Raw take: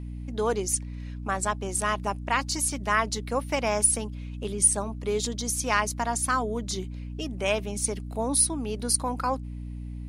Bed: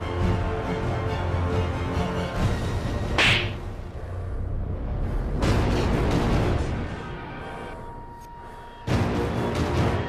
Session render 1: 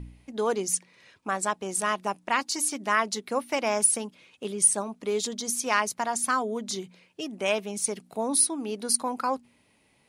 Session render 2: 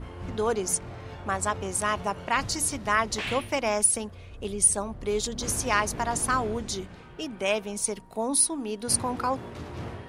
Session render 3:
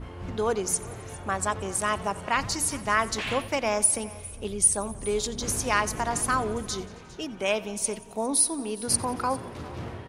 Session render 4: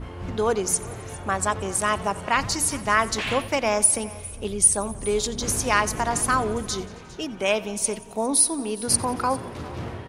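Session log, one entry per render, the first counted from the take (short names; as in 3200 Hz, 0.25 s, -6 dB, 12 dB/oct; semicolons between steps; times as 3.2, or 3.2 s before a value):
de-hum 60 Hz, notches 5
add bed -14 dB
echo 0.405 s -20 dB; warbling echo 89 ms, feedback 67%, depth 55 cents, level -20 dB
gain +3.5 dB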